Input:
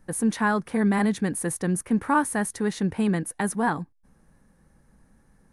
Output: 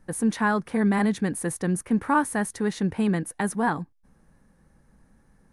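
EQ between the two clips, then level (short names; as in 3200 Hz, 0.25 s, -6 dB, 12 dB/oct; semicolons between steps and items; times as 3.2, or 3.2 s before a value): high shelf 10000 Hz -5.5 dB; 0.0 dB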